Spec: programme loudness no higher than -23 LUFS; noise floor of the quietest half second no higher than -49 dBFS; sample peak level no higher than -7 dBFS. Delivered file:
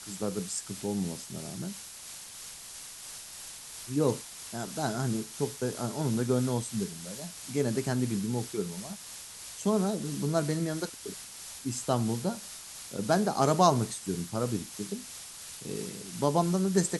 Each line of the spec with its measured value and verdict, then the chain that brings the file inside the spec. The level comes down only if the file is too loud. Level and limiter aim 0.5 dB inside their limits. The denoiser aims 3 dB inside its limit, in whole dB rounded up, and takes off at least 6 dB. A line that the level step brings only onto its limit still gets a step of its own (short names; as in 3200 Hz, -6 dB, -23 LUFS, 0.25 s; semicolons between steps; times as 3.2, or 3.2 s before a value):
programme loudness -32.0 LUFS: OK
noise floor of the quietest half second -45 dBFS: fail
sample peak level -8.0 dBFS: OK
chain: denoiser 7 dB, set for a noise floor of -45 dBFS